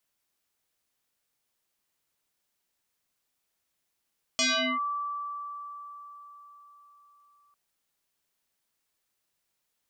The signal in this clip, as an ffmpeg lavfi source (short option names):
-f lavfi -i "aevalsrc='0.0841*pow(10,-3*t/4.6)*sin(2*PI*1160*t+6.6*clip(1-t/0.4,0,1)*sin(2*PI*0.78*1160*t))':d=3.15:s=44100"